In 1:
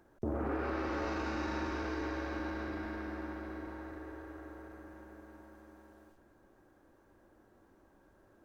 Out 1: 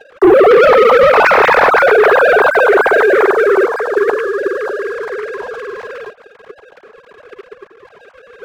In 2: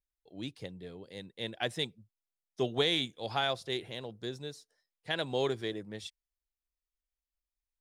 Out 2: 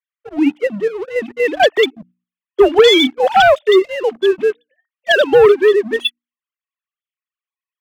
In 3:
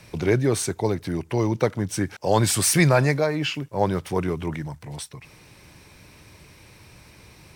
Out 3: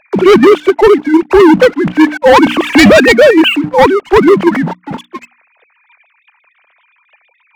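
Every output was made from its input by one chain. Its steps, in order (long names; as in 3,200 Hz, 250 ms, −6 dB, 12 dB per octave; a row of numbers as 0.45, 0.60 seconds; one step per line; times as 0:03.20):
three sine waves on the formant tracks
mains-hum notches 60/120/180/240/300 Hz
leveller curve on the samples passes 1
in parallel at +1 dB: output level in coarse steps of 20 dB
on the sum: leveller curve on the samples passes 1
hard clipping −10.5 dBFS
normalise the peak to −1.5 dBFS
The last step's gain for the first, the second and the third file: +20.0, +15.0, +9.0 decibels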